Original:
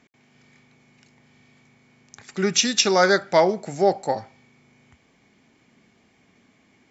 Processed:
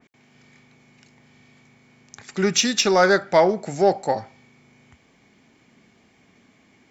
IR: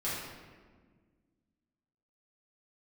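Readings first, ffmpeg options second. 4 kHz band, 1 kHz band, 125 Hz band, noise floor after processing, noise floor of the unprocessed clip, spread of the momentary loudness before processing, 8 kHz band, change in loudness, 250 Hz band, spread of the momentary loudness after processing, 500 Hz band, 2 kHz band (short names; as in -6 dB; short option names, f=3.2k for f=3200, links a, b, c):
-1.0 dB, +1.0 dB, +1.5 dB, -59 dBFS, -61 dBFS, 11 LU, n/a, +0.5 dB, +1.5 dB, 10 LU, +1.5 dB, +0.5 dB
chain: -filter_complex "[0:a]asplit=2[a][b];[b]asoftclip=type=tanh:threshold=-20dB,volume=-9.5dB[c];[a][c]amix=inputs=2:normalize=0,adynamicequalizer=threshold=0.02:dfrequency=2800:dqfactor=0.7:tfrequency=2800:tqfactor=0.7:attack=5:release=100:ratio=0.375:range=3:mode=cutabove:tftype=highshelf"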